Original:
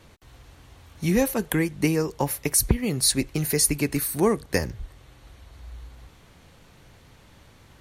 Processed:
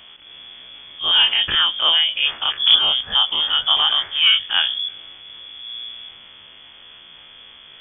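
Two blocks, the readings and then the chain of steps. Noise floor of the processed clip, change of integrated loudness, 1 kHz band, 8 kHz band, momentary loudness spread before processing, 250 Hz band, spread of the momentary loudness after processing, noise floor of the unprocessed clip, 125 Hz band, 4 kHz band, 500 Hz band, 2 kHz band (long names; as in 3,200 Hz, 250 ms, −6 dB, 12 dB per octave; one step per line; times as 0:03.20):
−45 dBFS, +8.0 dB, +7.0 dB, below −40 dB, 7 LU, below −20 dB, 17 LU, −53 dBFS, below −20 dB, +21.5 dB, −13.5 dB, +9.0 dB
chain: every bin's largest magnitude spread in time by 60 ms
transient designer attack −8 dB, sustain +2 dB
voice inversion scrambler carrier 3,400 Hz
level +4.5 dB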